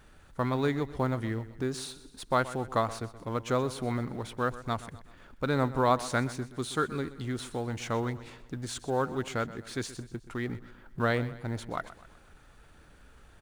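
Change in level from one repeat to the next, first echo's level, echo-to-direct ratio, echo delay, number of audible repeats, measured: -6.5 dB, -16.0 dB, -15.0 dB, 0.126 s, 3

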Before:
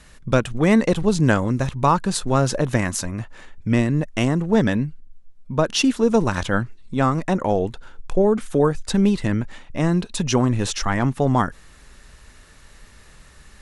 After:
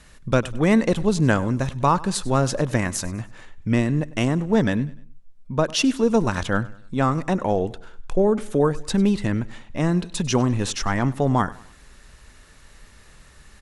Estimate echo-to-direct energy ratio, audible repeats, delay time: -19.5 dB, 2, 99 ms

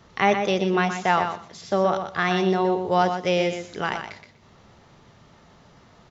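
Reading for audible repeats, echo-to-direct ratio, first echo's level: 2, -7.5 dB, -7.5 dB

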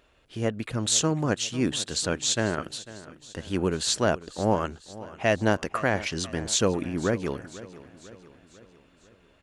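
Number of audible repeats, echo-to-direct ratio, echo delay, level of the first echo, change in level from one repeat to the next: 4, -16.0 dB, 0.497 s, -17.5 dB, -5.5 dB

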